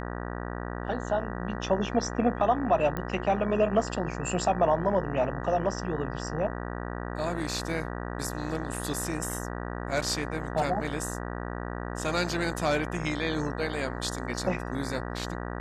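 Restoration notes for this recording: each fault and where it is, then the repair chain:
mains buzz 60 Hz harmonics 32 −35 dBFS
0:02.97: click −19 dBFS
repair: click removal
hum removal 60 Hz, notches 32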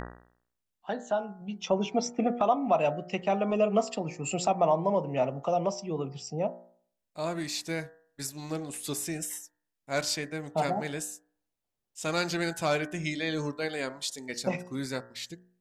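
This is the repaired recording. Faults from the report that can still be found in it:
none of them is left

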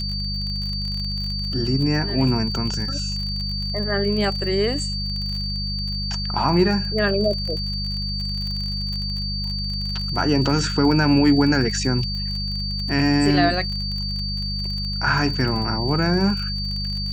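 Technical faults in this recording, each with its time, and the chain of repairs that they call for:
surface crackle 38 per second −28 dBFS
mains hum 50 Hz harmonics 4 −28 dBFS
whistle 4,600 Hz −27 dBFS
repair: click removal
hum removal 50 Hz, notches 4
notch filter 4,600 Hz, Q 30

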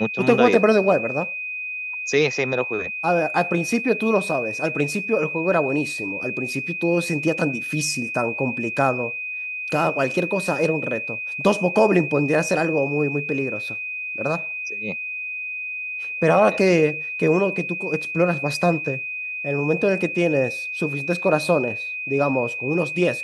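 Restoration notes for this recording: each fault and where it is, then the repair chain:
whistle 2,500 Hz −27 dBFS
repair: notch filter 2,500 Hz, Q 30

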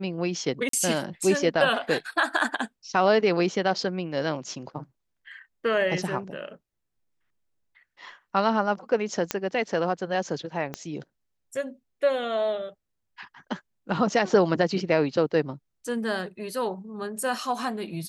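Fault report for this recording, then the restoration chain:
0:00.69–0:00.73: drop-out 43 ms
0:09.31: click −8 dBFS
0:10.74: click −17 dBFS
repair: click removal
repair the gap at 0:00.69, 43 ms

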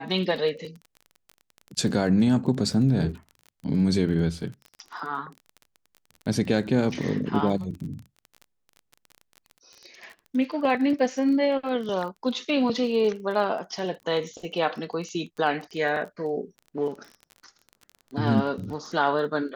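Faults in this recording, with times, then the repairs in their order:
surface crackle 23 per second −34 dBFS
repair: click removal

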